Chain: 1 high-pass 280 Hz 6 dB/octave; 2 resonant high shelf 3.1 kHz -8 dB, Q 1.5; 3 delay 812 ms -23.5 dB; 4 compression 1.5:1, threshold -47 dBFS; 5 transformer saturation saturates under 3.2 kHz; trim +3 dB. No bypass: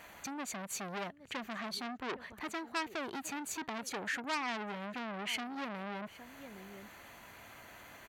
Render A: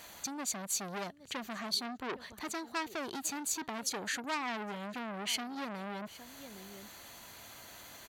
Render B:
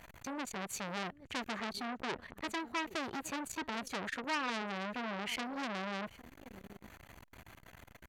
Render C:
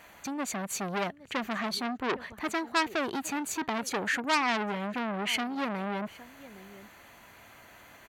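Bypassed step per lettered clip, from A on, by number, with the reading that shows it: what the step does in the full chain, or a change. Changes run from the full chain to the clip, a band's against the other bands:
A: 2, 8 kHz band +6.5 dB; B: 1, 8 kHz band -3.5 dB; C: 4, mean gain reduction 5.0 dB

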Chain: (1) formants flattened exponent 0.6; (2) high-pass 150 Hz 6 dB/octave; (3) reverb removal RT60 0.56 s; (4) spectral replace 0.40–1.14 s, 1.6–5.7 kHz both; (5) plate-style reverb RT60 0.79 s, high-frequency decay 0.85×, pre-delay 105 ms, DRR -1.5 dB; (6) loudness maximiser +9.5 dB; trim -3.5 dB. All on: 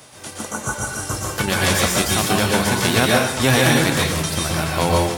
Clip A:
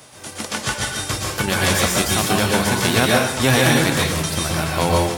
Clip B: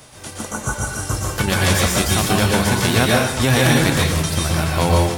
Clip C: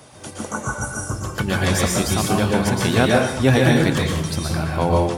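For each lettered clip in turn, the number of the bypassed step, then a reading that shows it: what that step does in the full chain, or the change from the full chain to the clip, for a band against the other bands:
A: 4, momentary loudness spread change -2 LU; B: 2, 125 Hz band +4.0 dB; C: 1, 4 kHz band -5.0 dB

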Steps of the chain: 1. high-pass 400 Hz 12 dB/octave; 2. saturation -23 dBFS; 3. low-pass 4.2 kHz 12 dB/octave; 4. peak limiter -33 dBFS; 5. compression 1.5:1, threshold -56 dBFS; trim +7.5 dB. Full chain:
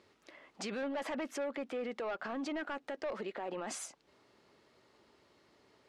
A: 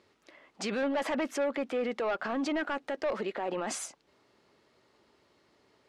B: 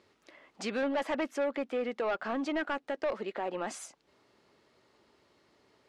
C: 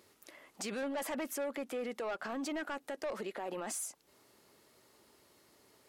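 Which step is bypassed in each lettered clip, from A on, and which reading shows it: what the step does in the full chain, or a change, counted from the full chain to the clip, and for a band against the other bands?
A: 5, mean gain reduction 5.0 dB; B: 4, mean gain reduction 6.0 dB; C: 3, 8 kHz band +5.0 dB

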